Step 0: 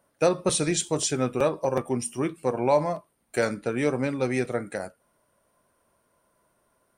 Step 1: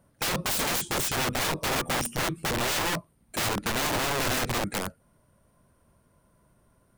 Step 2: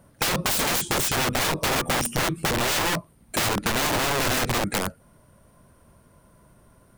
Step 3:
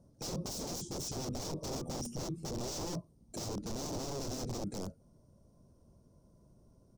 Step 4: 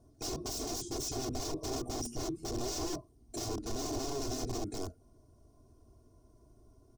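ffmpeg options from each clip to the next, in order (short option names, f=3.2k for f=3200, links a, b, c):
-af "bass=f=250:g=15,treble=f=4k:g=0,aeval=exprs='(mod(13.3*val(0)+1,2)-1)/13.3':c=same"
-af "acompressor=threshold=-30dB:ratio=6,volume=8.5dB"
-af "firequalizer=gain_entry='entry(360,0);entry(1700,-23);entry(2900,-18);entry(5600,1);entry(9500,-14)':delay=0.05:min_phase=1,alimiter=level_in=1dB:limit=-24dB:level=0:latency=1:release=13,volume=-1dB,volume=-6.5dB"
-af "aecho=1:1:2.8:0.9"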